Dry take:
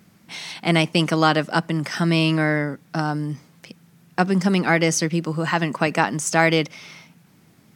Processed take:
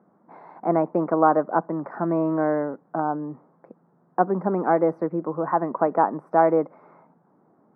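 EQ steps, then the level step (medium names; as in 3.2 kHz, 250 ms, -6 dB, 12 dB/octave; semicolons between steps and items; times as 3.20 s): high-pass 370 Hz 12 dB/octave; inverse Chebyshev low-pass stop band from 2.8 kHz, stop band 50 dB; +3.0 dB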